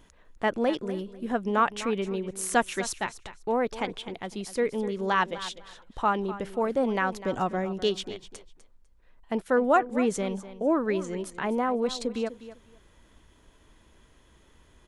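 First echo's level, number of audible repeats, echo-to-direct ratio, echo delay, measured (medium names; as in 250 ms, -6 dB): -14.5 dB, 2, -14.5 dB, 250 ms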